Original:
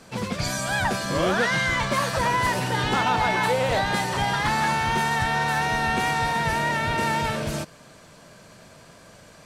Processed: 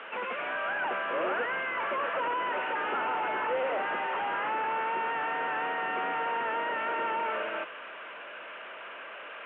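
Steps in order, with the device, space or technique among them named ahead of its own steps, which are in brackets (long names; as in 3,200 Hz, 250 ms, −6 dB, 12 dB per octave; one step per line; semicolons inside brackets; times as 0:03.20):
digital answering machine (band-pass filter 360–3,200 Hz; linear delta modulator 16 kbit/s, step −37.5 dBFS; loudspeaker in its box 450–3,400 Hz, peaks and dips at 730 Hz −3 dB, 1,400 Hz +6 dB, 2,800 Hz +6 dB)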